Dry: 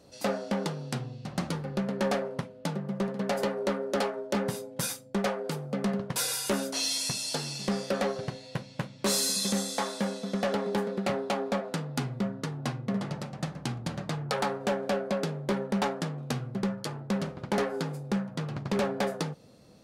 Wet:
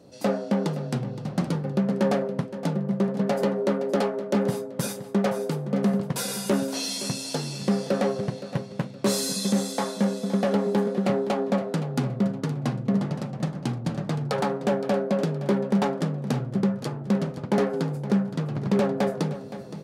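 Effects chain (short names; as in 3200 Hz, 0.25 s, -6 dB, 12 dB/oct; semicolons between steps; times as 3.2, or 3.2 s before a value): HPF 120 Hz; tilt shelf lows +5 dB, about 670 Hz; reverse; upward compressor, threshold -39 dBFS; reverse; feedback echo 0.518 s, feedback 34%, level -13.5 dB; gain +3.5 dB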